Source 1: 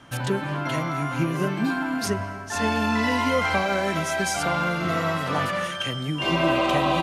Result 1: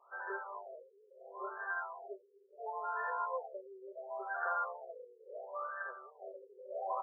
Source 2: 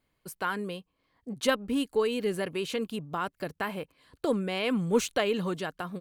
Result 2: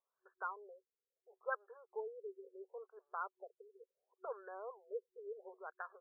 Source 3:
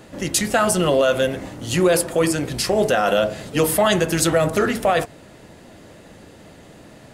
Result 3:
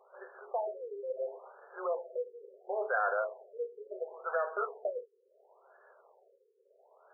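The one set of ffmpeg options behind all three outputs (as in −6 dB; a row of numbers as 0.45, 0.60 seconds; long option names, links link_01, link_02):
-af "aderivative,afftfilt=real='re*between(b*sr/4096,370,3200)':imag='im*between(b*sr/4096,370,3200)':win_size=4096:overlap=0.75,afftfilt=real='re*lt(b*sr/1024,500*pow(1800/500,0.5+0.5*sin(2*PI*0.72*pts/sr)))':imag='im*lt(b*sr/1024,500*pow(1800/500,0.5+0.5*sin(2*PI*0.72*pts/sr)))':win_size=1024:overlap=0.75,volume=7dB"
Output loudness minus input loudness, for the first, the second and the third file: −17.0, −17.0, −17.5 LU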